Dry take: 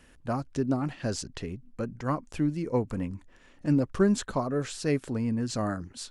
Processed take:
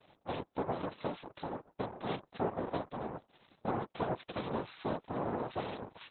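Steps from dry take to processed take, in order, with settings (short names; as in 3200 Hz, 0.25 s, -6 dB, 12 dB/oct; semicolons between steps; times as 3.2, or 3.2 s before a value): compressor 4:1, threshold -33 dBFS, peak gain reduction 13 dB; LPF 4000 Hz 12 dB/oct; noise vocoder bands 2; Opus 8 kbps 48000 Hz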